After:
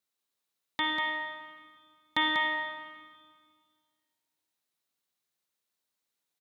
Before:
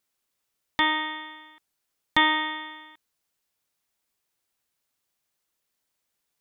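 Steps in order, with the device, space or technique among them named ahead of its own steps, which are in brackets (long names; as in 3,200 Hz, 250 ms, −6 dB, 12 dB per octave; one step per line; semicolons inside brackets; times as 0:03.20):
PA in a hall (high-pass filter 110 Hz 12 dB per octave; parametric band 3,900 Hz +5.5 dB 0.23 octaves; single-tap delay 193 ms −5.5 dB; convolution reverb RT60 1.8 s, pre-delay 47 ms, DRR 5.5 dB)
level −8 dB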